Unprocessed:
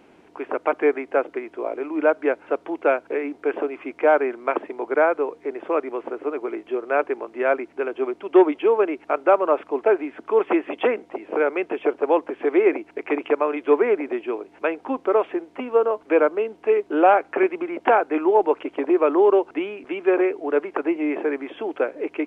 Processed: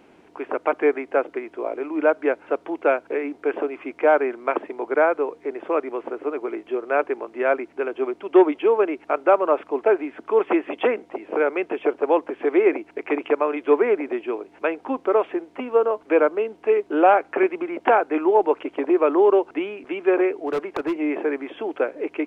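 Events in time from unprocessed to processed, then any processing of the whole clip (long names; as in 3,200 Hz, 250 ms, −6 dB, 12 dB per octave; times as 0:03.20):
0:20.46–0:20.97: hard clipping −19.5 dBFS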